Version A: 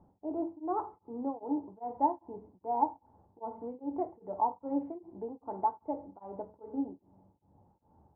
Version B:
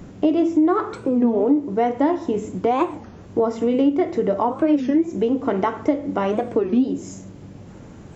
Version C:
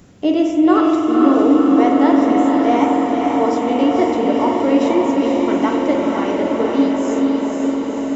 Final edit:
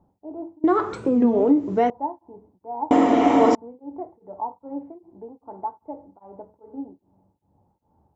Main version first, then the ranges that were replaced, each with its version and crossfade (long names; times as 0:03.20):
A
0:00.64–0:01.90: punch in from B
0:02.91–0:03.55: punch in from C